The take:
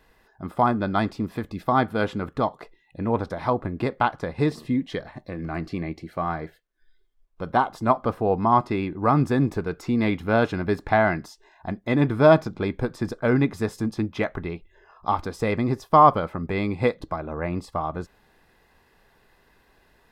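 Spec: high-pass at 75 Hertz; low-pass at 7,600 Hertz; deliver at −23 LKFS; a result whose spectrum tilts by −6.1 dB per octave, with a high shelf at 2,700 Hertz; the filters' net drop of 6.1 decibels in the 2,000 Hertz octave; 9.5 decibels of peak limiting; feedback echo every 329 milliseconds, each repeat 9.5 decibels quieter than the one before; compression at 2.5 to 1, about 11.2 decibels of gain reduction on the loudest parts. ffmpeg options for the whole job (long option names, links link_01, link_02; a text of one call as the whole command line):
ffmpeg -i in.wav -af "highpass=75,lowpass=7600,equalizer=frequency=2000:width_type=o:gain=-6.5,highshelf=frequency=2700:gain=-5.5,acompressor=threshold=-28dB:ratio=2.5,alimiter=limit=-21.5dB:level=0:latency=1,aecho=1:1:329|658|987|1316:0.335|0.111|0.0365|0.012,volume=10.5dB" out.wav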